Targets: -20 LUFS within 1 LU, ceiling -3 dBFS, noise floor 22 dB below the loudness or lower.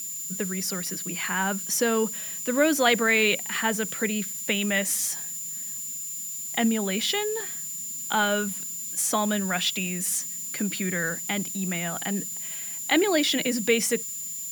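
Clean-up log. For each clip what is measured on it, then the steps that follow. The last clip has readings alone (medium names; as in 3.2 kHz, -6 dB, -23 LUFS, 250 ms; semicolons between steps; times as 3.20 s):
steady tone 7.1 kHz; tone level -33 dBFS; noise floor -35 dBFS; noise floor target -48 dBFS; loudness -25.5 LUFS; peak level -6.5 dBFS; loudness target -20.0 LUFS
-> band-stop 7.1 kHz, Q 30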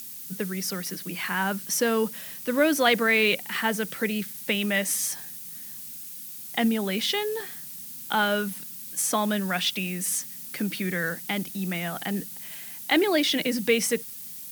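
steady tone not found; noise floor -40 dBFS; noise floor target -49 dBFS
-> noise reduction 9 dB, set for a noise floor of -40 dBFS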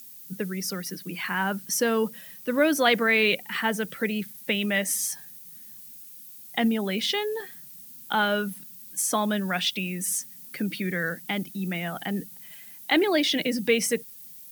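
noise floor -45 dBFS; noise floor target -48 dBFS
-> noise reduction 6 dB, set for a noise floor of -45 dBFS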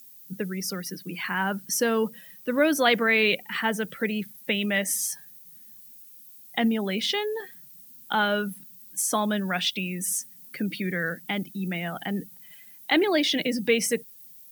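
noise floor -49 dBFS; loudness -26.0 LUFS; peak level -6.5 dBFS; loudness target -20.0 LUFS
-> trim +6 dB; peak limiter -3 dBFS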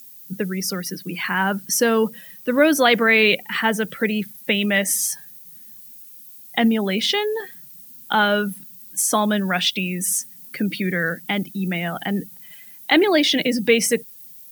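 loudness -20.5 LUFS; peak level -3.0 dBFS; noise floor -43 dBFS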